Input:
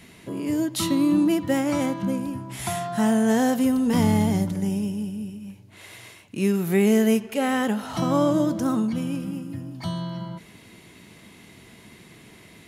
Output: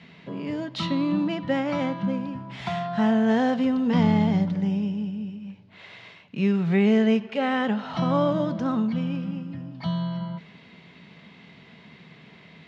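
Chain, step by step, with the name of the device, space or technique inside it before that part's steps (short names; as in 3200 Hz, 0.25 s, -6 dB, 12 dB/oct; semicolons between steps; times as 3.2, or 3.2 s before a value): guitar cabinet (speaker cabinet 100–4200 Hz, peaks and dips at 110 Hz -9 dB, 160 Hz +7 dB, 330 Hz -10 dB)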